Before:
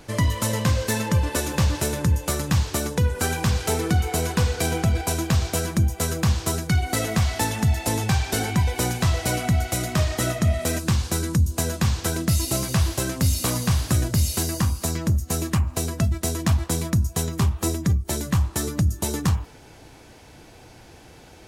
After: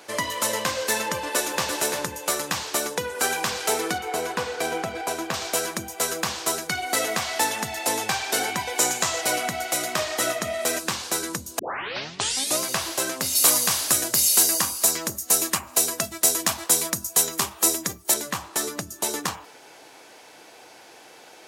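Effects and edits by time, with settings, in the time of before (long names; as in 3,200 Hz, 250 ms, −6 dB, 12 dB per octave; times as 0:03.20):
0:01.21–0:01.71: delay throw 340 ms, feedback 10%, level −8.5 dB
0:03.98–0:05.34: high-shelf EQ 3,000 Hz −9 dB
0:08.78–0:09.21: parametric band 7,100 Hz +9.5 dB 0.39 octaves
0:11.59: tape start 1.01 s
0:13.35–0:18.14: high-shelf EQ 5,300 Hz +10.5 dB
whole clip: high-pass filter 470 Hz 12 dB per octave; level +3 dB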